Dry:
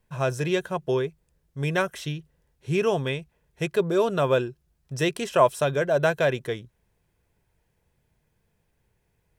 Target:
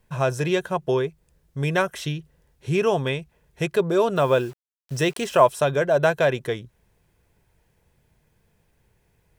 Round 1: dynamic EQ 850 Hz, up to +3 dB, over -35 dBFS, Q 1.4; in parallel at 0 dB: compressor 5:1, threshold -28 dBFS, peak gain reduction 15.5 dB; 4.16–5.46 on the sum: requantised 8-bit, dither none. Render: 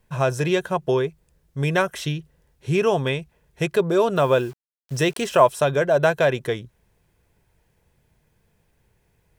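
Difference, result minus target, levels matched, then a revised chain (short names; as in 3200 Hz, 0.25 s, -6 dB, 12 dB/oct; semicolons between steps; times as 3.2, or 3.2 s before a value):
compressor: peak gain reduction -5.5 dB
dynamic EQ 850 Hz, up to +3 dB, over -35 dBFS, Q 1.4; in parallel at 0 dB: compressor 5:1, threshold -35 dBFS, peak gain reduction 21 dB; 4.16–5.46 on the sum: requantised 8-bit, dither none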